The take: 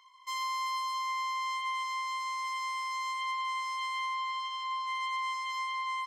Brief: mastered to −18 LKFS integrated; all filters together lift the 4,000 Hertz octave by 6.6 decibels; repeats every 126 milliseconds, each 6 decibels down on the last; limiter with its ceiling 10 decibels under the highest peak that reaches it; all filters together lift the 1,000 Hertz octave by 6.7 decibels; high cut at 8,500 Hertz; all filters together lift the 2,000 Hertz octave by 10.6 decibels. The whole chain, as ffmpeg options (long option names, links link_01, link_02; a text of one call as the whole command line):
ffmpeg -i in.wav -af "lowpass=8500,equalizer=frequency=1000:width_type=o:gain=4.5,equalizer=frequency=2000:width_type=o:gain=9,equalizer=frequency=4000:width_type=o:gain=5,alimiter=level_in=5dB:limit=-24dB:level=0:latency=1,volume=-5dB,aecho=1:1:126|252|378|504|630|756:0.501|0.251|0.125|0.0626|0.0313|0.0157,volume=15dB" out.wav